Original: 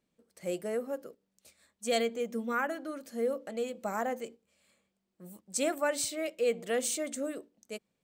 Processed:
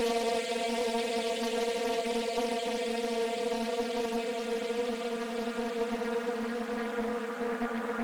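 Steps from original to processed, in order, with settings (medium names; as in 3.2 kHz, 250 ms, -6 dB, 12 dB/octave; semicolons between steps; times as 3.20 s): Paulstretch 21×, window 1.00 s, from 1.99 s; loudspeaker Doppler distortion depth 0.61 ms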